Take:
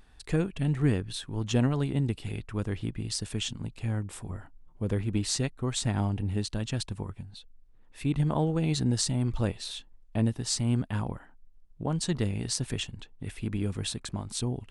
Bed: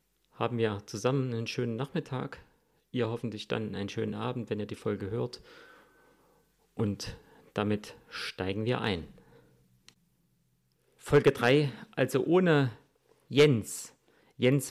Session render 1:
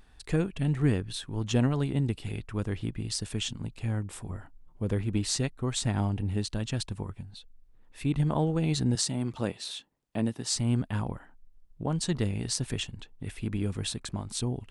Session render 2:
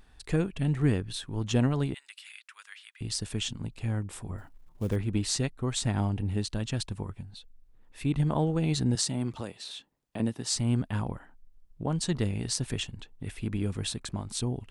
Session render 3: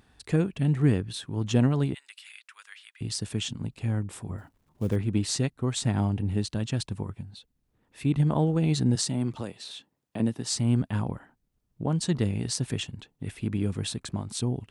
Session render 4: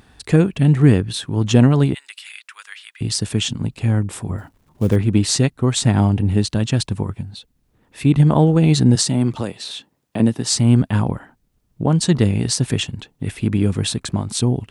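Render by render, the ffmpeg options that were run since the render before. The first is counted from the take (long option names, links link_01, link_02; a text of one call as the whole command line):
ffmpeg -i in.wav -filter_complex "[0:a]asettb=1/sr,asplit=3[link_01][link_02][link_03];[link_01]atrim=end=8.954[link_04];[link_02]atrim=start=8.95:end=10.56,asetpts=PTS-STARTPTS,afade=type=in:duration=0.004:curve=qsin,afade=type=out:start_time=1.606:duration=0.004:curve=qsin,highpass=160[link_05];[link_03]atrim=start=10.556[link_06];[link_04][link_05]acrossfade=duration=0.004:curve1=hsin:curve2=qsin[link_07];[link_07][link_06]acrossfade=duration=0.004:curve1=qsin:curve2=hsin" out.wav
ffmpeg -i in.wav -filter_complex "[0:a]asettb=1/sr,asplit=3[link_01][link_02][link_03];[link_01]atrim=end=1.944[link_04];[link_02]atrim=start=1.94:end=3.01,asetpts=PTS-STARTPTS,afade=type=in:duration=0.004:curve=qsin,afade=type=out:start_time=1.066:duration=0.004:curve=qsin,highpass=frequency=1500:width=0.5412,highpass=frequency=1500:width=1.3066[link_05];[link_03]atrim=start=3.006[link_06];[link_04][link_05]acrossfade=duration=0.004:curve1=hsin:curve2=qsin[link_07];[link_07][link_06]acrossfade=duration=0.004:curve1=qsin:curve2=hsin,asettb=1/sr,asplit=3[link_08][link_09][link_10];[link_08]atrim=end=4.384[link_11];[link_09]atrim=start=4.38:end=4.96,asetpts=PTS-STARTPTS,afade=type=in:duration=0.004:curve=qsin,afade=type=out:start_time=0.576:duration=0.004:curve=qsin,acrusher=bits=7:mode=log:mix=0:aa=0.000001[link_12];[link_10]atrim=start=4.956[link_13];[link_11][link_12]acrossfade=duration=0.004:curve1=hsin:curve2=qsin[link_14];[link_14][link_13]acrossfade=duration=0.004:curve1=qsin:curve2=hsin,asettb=1/sr,asplit=3[link_15][link_16][link_17];[link_15]atrim=end=9.404[link_18];[link_16]atrim=start=9.4:end=10.2,asetpts=PTS-STARTPTS,afade=type=in:duration=0.004:curve=qsin,afade=type=out:start_time=0.796:duration=0.004:curve=qsin,acrossover=split=460|4600[link_19][link_20][link_21];[link_19]acompressor=threshold=-38dB:ratio=4[link_22];[link_20]acompressor=threshold=-40dB:ratio=4[link_23];[link_21]acompressor=threshold=-48dB:ratio=4[link_24];[link_22][link_23][link_24]amix=inputs=3:normalize=0[link_25];[link_17]atrim=start=10.196[link_26];[link_18][link_25]acrossfade=duration=0.004:curve1=hsin:curve2=qsin[link_27];[link_27][link_26]acrossfade=duration=0.004:curve1=qsin:curve2=hsin" out.wav
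ffmpeg -i in.wav -af "highpass=90,lowshelf=frequency=390:gain=4.5" out.wav
ffmpeg -i in.wav -af "volume=10.5dB,alimiter=limit=-3dB:level=0:latency=1" out.wav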